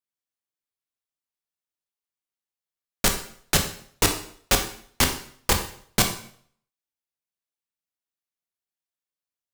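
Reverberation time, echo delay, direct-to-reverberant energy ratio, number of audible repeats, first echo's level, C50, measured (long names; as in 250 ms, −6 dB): 0.55 s, no echo audible, 4.0 dB, no echo audible, no echo audible, 8.5 dB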